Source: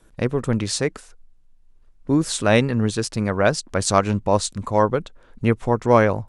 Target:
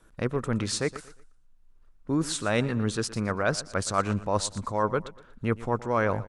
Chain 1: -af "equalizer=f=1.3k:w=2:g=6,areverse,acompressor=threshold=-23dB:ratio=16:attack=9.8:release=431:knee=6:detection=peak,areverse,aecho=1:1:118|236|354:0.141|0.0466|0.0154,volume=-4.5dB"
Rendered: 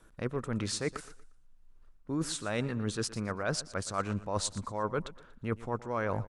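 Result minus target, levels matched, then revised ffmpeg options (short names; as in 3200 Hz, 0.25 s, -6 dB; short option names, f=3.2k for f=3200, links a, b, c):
compressor: peak gain reduction +8 dB
-af "equalizer=f=1.3k:w=2:g=6,areverse,acompressor=threshold=-14.5dB:ratio=16:attack=9.8:release=431:knee=6:detection=peak,areverse,aecho=1:1:118|236|354:0.141|0.0466|0.0154,volume=-4.5dB"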